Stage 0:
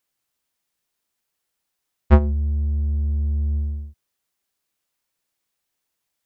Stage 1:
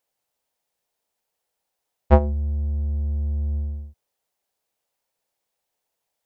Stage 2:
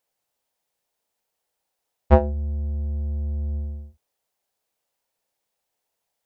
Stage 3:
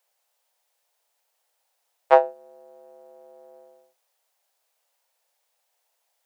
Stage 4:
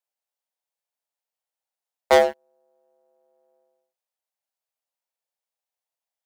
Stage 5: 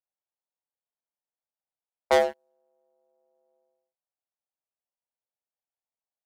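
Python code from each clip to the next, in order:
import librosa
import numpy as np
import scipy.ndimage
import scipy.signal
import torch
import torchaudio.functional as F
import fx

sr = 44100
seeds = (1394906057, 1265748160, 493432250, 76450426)

y1 = fx.band_shelf(x, sr, hz=630.0, db=8.5, octaves=1.3)
y1 = y1 * 10.0 ** (-2.5 / 20.0)
y2 = fx.doubler(y1, sr, ms=35.0, db=-12.0)
y3 = scipy.signal.sosfilt(scipy.signal.cheby2(4, 50, 200.0, 'highpass', fs=sr, output='sos'), y2)
y3 = y3 * 10.0 ** (6.0 / 20.0)
y4 = fx.leveller(y3, sr, passes=5)
y4 = y4 * 10.0 ** (-7.5 / 20.0)
y5 = fx.env_lowpass(y4, sr, base_hz=1200.0, full_db=-22.5)
y5 = y5 * 10.0 ** (-5.0 / 20.0)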